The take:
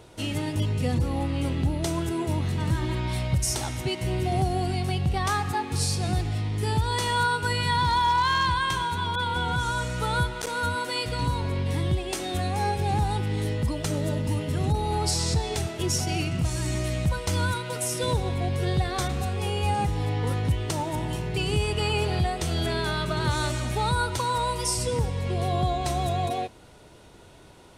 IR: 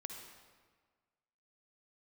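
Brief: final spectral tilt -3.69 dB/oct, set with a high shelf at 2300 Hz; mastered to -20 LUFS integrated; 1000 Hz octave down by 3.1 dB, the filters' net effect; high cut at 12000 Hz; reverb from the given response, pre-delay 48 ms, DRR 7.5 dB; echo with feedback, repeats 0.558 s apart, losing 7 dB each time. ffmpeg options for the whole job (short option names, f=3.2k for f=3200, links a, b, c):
-filter_complex "[0:a]lowpass=12k,equalizer=f=1k:t=o:g=-5,highshelf=f=2.3k:g=7.5,aecho=1:1:558|1116|1674|2232|2790:0.447|0.201|0.0905|0.0407|0.0183,asplit=2[a][b];[1:a]atrim=start_sample=2205,adelay=48[c];[b][c]afir=irnorm=-1:irlink=0,volume=-4.5dB[d];[a][d]amix=inputs=2:normalize=0,volume=3.5dB"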